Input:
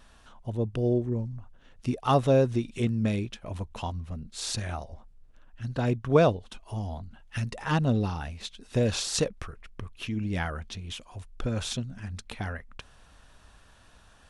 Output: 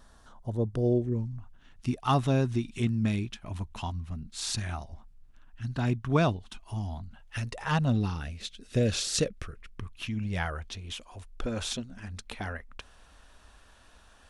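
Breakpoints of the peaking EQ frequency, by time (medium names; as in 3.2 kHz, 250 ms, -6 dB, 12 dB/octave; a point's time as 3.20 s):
peaking EQ -12.5 dB 0.59 oct
0.82 s 2.6 kHz
1.24 s 510 Hz
7.00 s 510 Hz
7.42 s 160 Hz
8.27 s 910 Hz
9.49 s 910 Hz
10.91 s 130 Hz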